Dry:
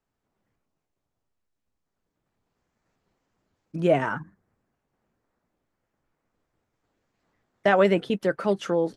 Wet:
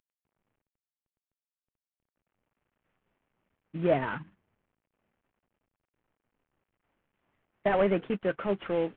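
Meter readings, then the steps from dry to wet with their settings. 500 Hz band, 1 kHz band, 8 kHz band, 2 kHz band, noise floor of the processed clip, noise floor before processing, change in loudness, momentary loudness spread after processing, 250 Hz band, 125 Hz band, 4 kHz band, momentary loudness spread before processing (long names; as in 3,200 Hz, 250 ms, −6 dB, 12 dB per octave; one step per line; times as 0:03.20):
−5.0 dB, −6.0 dB, can't be measured, −7.0 dB, below −85 dBFS, −82 dBFS, −5.5 dB, 10 LU, −5.0 dB, −5.0 dB, −8.5 dB, 11 LU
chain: variable-slope delta modulation 16 kbit/s
level −4 dB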